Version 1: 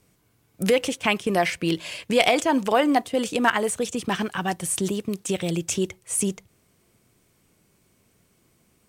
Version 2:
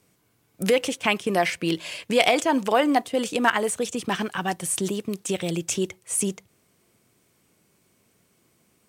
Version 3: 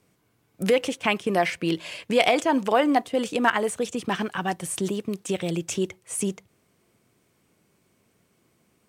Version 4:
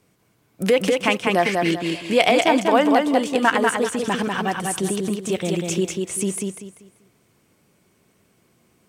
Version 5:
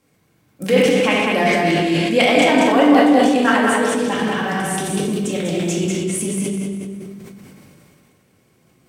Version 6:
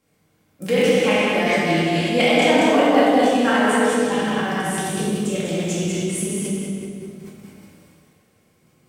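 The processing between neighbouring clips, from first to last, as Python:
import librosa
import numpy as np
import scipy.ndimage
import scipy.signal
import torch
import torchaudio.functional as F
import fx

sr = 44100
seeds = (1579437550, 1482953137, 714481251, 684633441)

y1 = fx.highpass(x, sr, hz=140.0, slope=6)
y2 = fx.high_shelf(y1, sr, hz=3900.0, db=-6.0)
y3 = fx.echo_feedback(y2, sr, ms=194, feedback_pct=29, wet_db=-3.5)
y3 = y3 * 10.0 ** (3.0 / 20.0)
y4 = fx.room_shoebox(y3, sr, seeds[0], volume_m3=700.0, walls='mixed', distance_m=2.2)
y4 = fx.sustainer(y4, sr, db_per_s=22.0)
y4 = y4 * 10.0 ** (-3.0 / 20.0)
y5 = fx.rev_plate(y4, sr, seeds[1], rt60_s=1.2, hf_ratio=0.95, predelay_ms=0, drr_db=-1.0)
y5 = y5 * 10.0 ** (-5.5 / 20.0)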